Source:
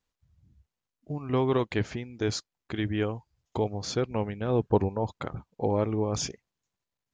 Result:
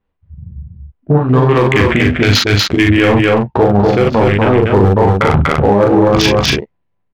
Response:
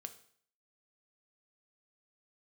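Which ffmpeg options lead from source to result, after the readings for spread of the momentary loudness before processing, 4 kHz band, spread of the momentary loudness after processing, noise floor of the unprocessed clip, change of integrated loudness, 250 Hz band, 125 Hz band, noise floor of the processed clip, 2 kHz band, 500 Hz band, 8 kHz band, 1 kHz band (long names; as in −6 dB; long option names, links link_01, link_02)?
12 LU, +22.0 dB, 3 LU, below −85 dBFS, +19.0 dB, +19.0 dB, +19.5 dB, −65 dBFS, +25.0 dB, +18.0 dB, +12.5 dB, +20.0 dB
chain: -filter_complex "[0:a]adynamicsmooth=sensitivity=5.5:basefreq=780,equalizer=frequency=2800:width=0.65:gain=12,areverse,acompressor=threshold=-35dB:ratio=6,areverse,flanger=delay=10:depth=5.9:regen=25:speed=0.42:shape=triangular,afwtdn=0.00398,volume=33.5dB,asoftclip=hard,volume=-33.5dB,asplit=2[link_01][link_02];[link_02]adelay=40,volume=-4dB[link_03];[link_01][link_03]amix=inputs=2:normalize=0,asplit=2[link_04][link_05];[link_05]aecho=0:1:241:0.596[link_06];[link_04][link_06]amix=inputs=2:normalize=0,alimiter=level_in=35dB:limit=-1dB:release=50:level=0:latency=1,volume=-1dB"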